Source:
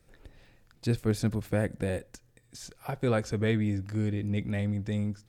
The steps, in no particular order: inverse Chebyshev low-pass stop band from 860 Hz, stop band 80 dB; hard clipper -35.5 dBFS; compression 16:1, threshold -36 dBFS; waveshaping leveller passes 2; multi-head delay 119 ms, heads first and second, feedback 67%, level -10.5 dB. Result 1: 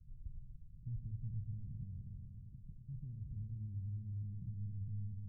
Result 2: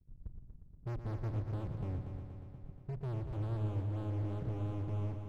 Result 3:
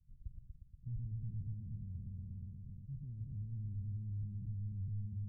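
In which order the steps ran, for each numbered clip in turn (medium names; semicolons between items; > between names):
hard clipper > waveshaping leveller > multi-head delay > compression > inverse Chebyshev low-pass; inverse Chebyshev low-pass > waveshaping leveller > hard clipper > compression > multi-head delay; waveshaping leveller > multi-head delay > hard clipper > compression > inverse Chebyshev low-pass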